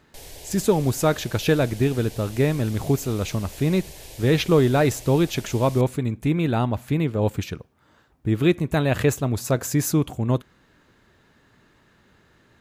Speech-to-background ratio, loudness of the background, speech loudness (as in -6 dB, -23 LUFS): 18.5 dB, -41.0 LUFS, -22.5 LUFS